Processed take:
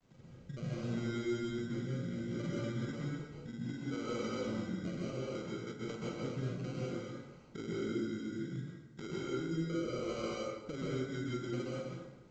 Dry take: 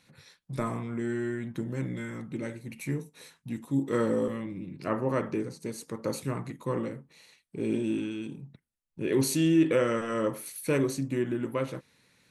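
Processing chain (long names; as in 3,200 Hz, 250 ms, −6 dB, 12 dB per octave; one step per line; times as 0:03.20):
Butterworth low-pass 1,900 Hz 36 dB per octave
mains-hum notches 50/100/150/200/250/300 Hz
downward compressor 6 to 1, threshold −42 dBFS, peak gain reduction 21.5 dB
granular cloud, spray 25 ms, pitch spread up and down by 0 semitones
decimation without filtering 25×
hard clipping −37 dBFS, distortion −22 dB
rotating-speaker cabinet horn 0.65 Hz, later 6 Hz, at 0:09.99
dense smooth reverb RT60 1.1 s, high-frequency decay 0.65×, pre-delay 115 ms, DRR −5 dB
level +2 dB
mu-law 128 kbit/s 16,000 Hz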